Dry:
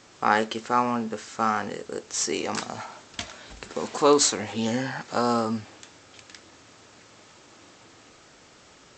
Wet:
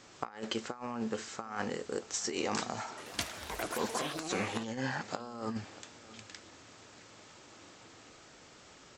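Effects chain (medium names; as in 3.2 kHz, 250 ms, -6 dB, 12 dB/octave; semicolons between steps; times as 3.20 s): compressor with a negative ratio -29 dBFS, ratio -0.5; delay 634 ms -19 dB; 2.89–5.23 s: ever faster or slower copies 86 ms, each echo +6 st, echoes 2; trim -7.5 dB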